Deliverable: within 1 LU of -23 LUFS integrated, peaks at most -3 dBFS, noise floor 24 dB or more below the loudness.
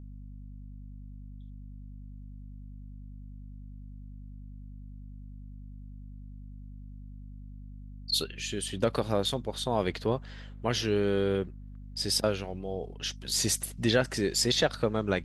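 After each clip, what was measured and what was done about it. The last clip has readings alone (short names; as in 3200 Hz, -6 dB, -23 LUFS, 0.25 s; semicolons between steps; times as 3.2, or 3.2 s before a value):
hum 50 Hz; harmonics up to 250 Hz; hum level -41 dBFS; loudness -29.5 LUFS; peak -11.5 dBFS; loudness target -23.0 LUFS
-> notches 50/100/150/200/250 Hz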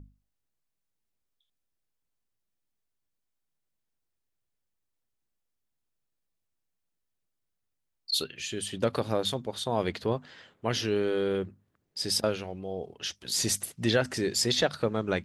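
hum none; loudness -29.5 LUFS; peak -11.5 dBFS; loudness target -23.0 LUFS
-> gain +6.5 dB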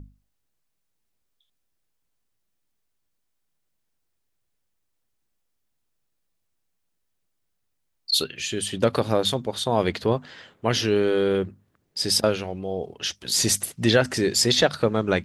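loudness -23.0 LUFS; peak -5.0 dBFS; noise floor -75 dBFS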